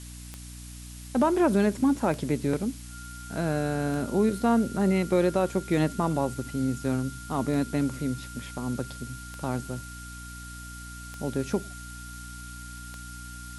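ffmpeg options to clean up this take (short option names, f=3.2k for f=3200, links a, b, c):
-af "adeclick=t=4,bandreject=f=60.1:t=h:w=4,bandreject=f=120.2:t=h:w=4,bandreject=f=180.3:t=h:w=4,bandreject=f=240.4:t=h:w=4,bandreject=f=300.5:t=h:w=4,bandreject=f=1.4k:w=30,afftdn=nr=30:nf=-41"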